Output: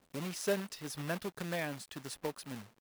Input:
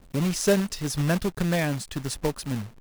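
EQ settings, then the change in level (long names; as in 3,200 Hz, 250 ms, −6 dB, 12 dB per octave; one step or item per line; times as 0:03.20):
high-pass filter 390 Hz 6 dB per octave
dynamic equaliser 6,800 Hz, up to −5 dB, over −43 dBFS, Q 1
−8.5 dB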